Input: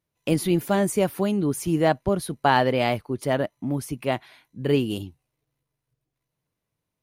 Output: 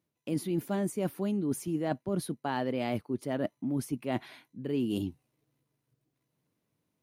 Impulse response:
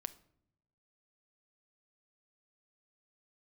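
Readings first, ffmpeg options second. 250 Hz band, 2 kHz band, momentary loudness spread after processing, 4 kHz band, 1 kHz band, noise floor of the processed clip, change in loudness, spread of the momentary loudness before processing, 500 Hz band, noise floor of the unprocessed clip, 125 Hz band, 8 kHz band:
−6.0 dB, −13.5 dB, 4 LU, −12.5 dB, −13.0 dB, −83 dBFS, −9.0 dB, 9 LU, −10.5 dB, −84 dBFS, −9.0 dB, −9.5 dB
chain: -af "highpass=80,equalizer=frequency=260:width_type=o:width=1.3:gain=8,areverse,acompressor=threshold=-29dB:ratio=6,areverse"

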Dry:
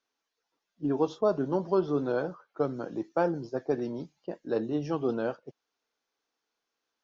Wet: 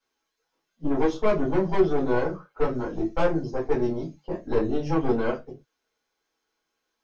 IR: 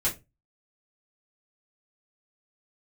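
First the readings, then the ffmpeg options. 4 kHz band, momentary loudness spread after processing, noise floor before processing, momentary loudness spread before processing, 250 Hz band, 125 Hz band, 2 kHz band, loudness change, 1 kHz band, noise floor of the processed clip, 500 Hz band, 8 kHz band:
+6.0 dB, 11 LU, −85 dBFS, 10 LU, +4.5 dB, +6.0 dB, +7.5 dB, +4.0 dB, +5.0 dB, −80 dBFS, +4.0 dB, can't be measured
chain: -filter_complex "[0:a]aeval=exprs='(tanh(17.8*val(0)+0.6)-tanh(0.6))/17.8':channel_layout=same[link_01];[1:a]atrim=start_sample=2205,afade=type=out:start_time=0.19:duration=0.01,atrim=end_sample=8820[link_02];[link_01][link_02]afir=irnorm=-1:irlink=0"

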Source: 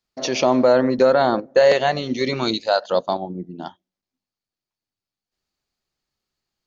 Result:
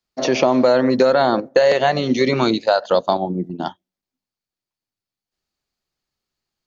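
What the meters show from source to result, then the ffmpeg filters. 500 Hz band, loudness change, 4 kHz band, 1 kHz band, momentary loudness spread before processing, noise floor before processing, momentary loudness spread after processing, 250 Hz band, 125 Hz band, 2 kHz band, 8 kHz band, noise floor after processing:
+1.5 dB, +1.5 dB, +1.0 dB, +2.0 dB, 16 LU, below −85 dBFS, 10 LU, +3.5 dB, +4.0 dB, +2.0 dB, can't be measured, below −85 dBFS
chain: -filter_complex "[0:a]acrossover=split=90|2300[link_01][link_02][link_03];[link_01]acompressor=threshold=-59dB:ratio=4[link_04];[link_02]acompressor=threshold=-20dB:ratio=4[link_05];[link_03]acompressor=threshold=-37dB:ratio=4[link_06];[link_04][link_05][link_06]amix=inputs=3:normalize=0,agate=range=-8dB:threshold=-35dB:ratio=16:detection=peak,volume=7.5dB"

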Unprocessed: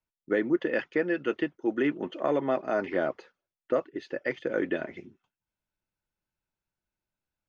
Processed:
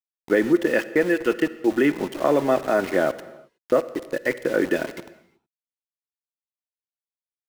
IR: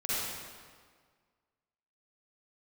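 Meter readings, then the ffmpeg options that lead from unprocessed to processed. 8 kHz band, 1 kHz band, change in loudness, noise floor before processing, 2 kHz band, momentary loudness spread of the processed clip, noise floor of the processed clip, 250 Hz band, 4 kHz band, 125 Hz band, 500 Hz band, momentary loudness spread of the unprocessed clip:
can't be measured, +7.0 dB, +7.0 dB, below −85 dBFS, +7.0 dB, 7 LU, below −85 dBFS, +7.0 dB, +8.5 dB, +7.0 dB, +7.0 dB, 7 LU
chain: -filter_complex "[0:a]aeval=exprs='val(0)*gte(abs(val(0)),0.0112)':channel_layout=same,asplit=2[link_01][link_02];[1:a]atrim=start_sample=2205,afade=type=out:start_time=0.43:duration=0.01,atrim=end_sample=19404[link_03];[link_02][link_03]afir=irnorm=-1:irlink=0,volume=-21dB[link_04];[link_01][link_04]amix=inputs=2:normalize=0,volume=6.5dB"

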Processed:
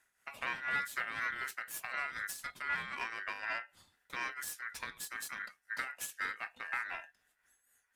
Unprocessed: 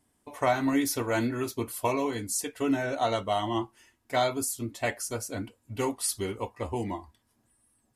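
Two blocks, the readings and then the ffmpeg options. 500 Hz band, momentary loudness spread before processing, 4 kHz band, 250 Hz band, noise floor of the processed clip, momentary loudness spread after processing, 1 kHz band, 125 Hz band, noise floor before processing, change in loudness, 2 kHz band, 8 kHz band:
−25.0 dB, 9 LU, −9.5 dB, −29.0 dB, −78 dBFS, 7 LU, −10.5 dB, −25.5 dB, −72 dBFS, −8.5 dB, +1.5 dB, −12.0 dB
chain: -filter_complex "[0:a]acrossover=split=240[link_01][link_02];[link_01]aeval=exprs='0.0251*(abs(mod(val(0)/0.0251+3,4)-2)-1)':channel_layout=same[link_03];[link_02]acompressor=threshold=-36dB:ratio=10[link_04];[link_03][link_04]amix=inputs=2:normalize=0,tremolo=f=4:d=0.59,aeval=exprs='0.0562*(cos(1*acos(clip(val(0)/0.0562,-1,1)))-cos(1*PI/2))+0.00562*(cos(4*acos(clip(val(0)/0.0562,-1,1)))-cos(4*PI/2))+0.00178*(cos(8*acos(clip(val(0)/0.0562,-1,1)))-cos(8*PI/2))':channel_layout=same,aeval=exprs='val(0)*sin(2*PI*1700*n/s)':channel_layout=same,volume=1.5dB"

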